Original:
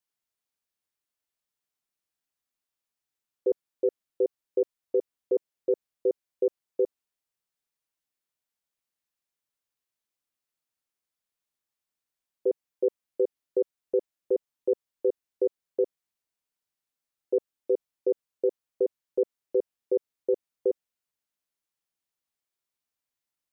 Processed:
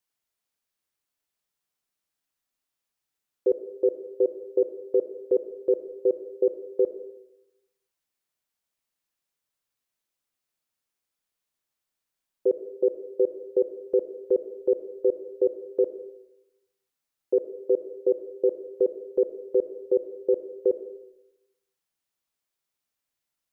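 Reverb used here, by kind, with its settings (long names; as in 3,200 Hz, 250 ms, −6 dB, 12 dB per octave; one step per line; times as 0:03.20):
comb and all-pass reverb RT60 0.91 s, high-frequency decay 0.5×, pre-delay 25 ms, DRR 10 dB
level +3 dB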